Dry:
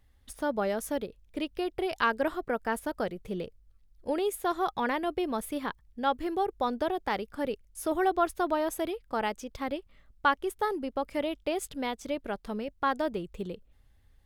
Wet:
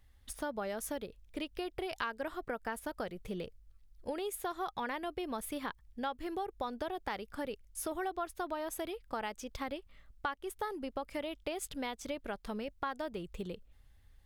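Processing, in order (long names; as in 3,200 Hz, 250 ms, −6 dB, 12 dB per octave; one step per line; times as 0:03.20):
parametric band 310 Hz −4.5 dB 2.8 octaves
downward compressor 4 to 1, threshold −36 dBFS, peak gain reduction 13.5 dB
level +1 dB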